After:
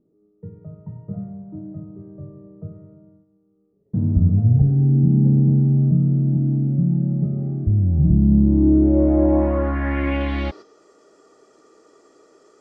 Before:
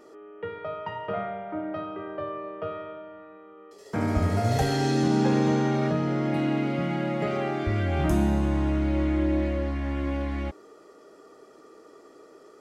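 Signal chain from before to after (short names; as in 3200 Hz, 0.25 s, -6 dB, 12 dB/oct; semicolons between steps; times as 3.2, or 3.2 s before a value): gate -44 dBFS, range -9 dB; low-pass sweep 160 Hz -> 7200 Hz, 8.22–10.84; gain +6.5 dB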